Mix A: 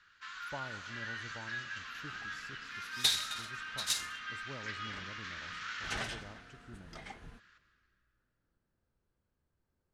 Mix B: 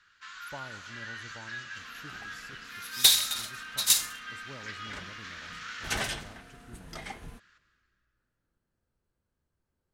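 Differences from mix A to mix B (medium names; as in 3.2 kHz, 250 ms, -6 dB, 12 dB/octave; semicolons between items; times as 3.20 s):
second sound +6.5 dB; master: remove distance through air 54 m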